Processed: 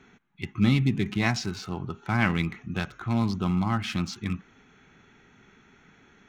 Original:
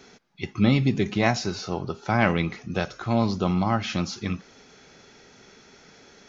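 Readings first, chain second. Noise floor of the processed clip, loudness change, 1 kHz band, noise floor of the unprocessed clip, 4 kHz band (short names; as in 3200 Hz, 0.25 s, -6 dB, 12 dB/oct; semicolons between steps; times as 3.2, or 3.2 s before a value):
-58 dBFS, -2.5 dB, -5.0 dB, -53 dBFS, -2.5 dB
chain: Wiener smoothing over 9 samples; bell 550 Hz -13.5 dB 1 oct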